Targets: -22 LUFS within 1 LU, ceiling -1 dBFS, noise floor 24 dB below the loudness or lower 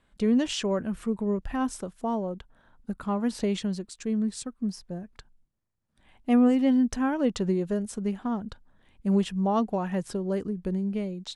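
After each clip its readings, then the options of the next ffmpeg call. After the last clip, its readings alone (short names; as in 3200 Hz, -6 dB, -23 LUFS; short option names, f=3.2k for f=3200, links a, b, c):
loudness -28.0 LUFS; peak -12.5 dBFS; loudness target -22.0 LUFS
-> -af "volume=6dB"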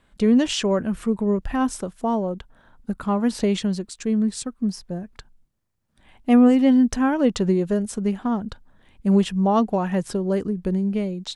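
loudness -22.0 LUFS; peak -6.5 dBFS; noise floor -63 dBFS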